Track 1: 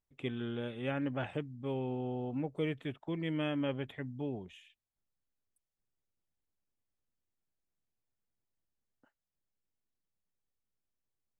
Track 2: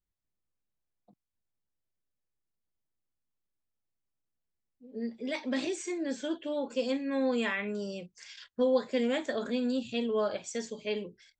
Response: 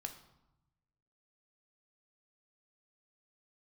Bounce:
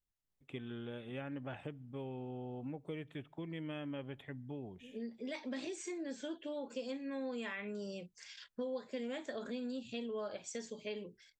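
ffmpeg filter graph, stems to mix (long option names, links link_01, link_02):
-filter_complex "[0:a]adelay=300,volume=-5dB,asplit=2[link_01][link_02];[link_02]volume=-16.5dB[link_03];[1:a]volume=-4dB[link_04];[2:a]atrim=start_sample=2205[link_05];[link_03][link_05]afir=irnorm=-1:irlink=0[link_06];[link_01][link_04][link_06]amix=inputs=3:normalize=0,acompressor=threshold=-40dB:ratio=3"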